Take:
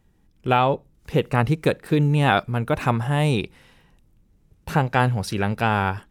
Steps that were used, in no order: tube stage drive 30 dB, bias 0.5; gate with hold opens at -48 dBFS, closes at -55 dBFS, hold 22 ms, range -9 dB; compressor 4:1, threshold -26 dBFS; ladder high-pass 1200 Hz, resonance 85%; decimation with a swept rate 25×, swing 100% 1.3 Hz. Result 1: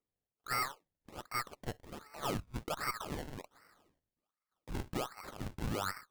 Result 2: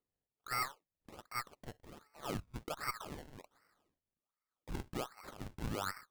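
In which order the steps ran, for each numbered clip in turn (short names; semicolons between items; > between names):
gate with hold > ladder high-pass > compressor > tube stage > decimation with a swept rate; compressor > ladder high-pass > tube stage > gate with hold > decimation with a swept rate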